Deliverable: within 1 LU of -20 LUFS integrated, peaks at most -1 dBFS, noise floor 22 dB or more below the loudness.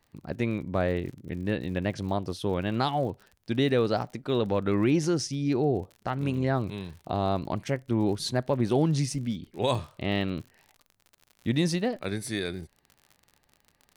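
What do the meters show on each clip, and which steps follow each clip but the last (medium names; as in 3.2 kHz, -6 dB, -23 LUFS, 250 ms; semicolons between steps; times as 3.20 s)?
tick rate 56 per s; loudness -28.5 LUFS; peak level -12.0 dBFS; loudness target -20.0 LUFS
-> de-click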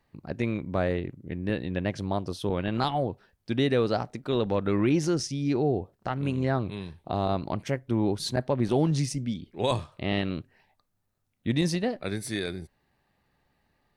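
tick rate 0 per s; loudness -28.5 LUFS; peak level -12.5 dBFS; loudness target -20.0 LUFS
-> trim +8.5 dB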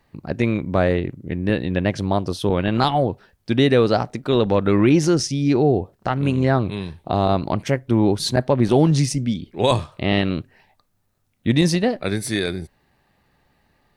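loudness -20.0 LUFS; peak level -4.0 dBFS; noise floor -66 dBFS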